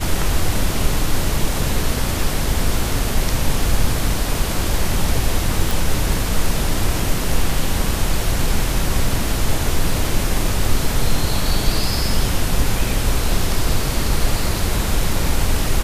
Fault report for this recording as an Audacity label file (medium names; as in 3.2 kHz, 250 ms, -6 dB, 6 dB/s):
5.710000	5.710000	pop